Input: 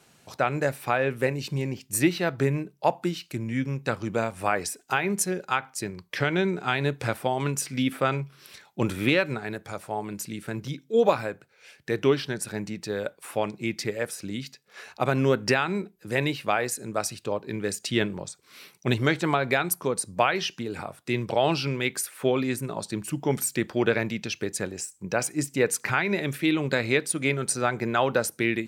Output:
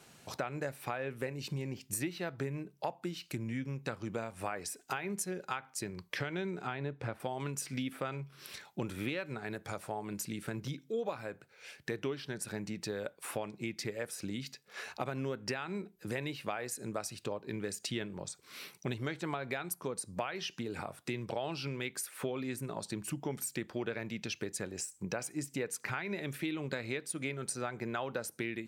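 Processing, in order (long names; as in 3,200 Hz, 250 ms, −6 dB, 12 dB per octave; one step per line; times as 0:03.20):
0:06.67–0:07.20: low-pass filter 1,500 Hz 6 dB per octave
downward compressor 4 to 1, threshold −36 dBFS, peak gain reduction 17.5 dB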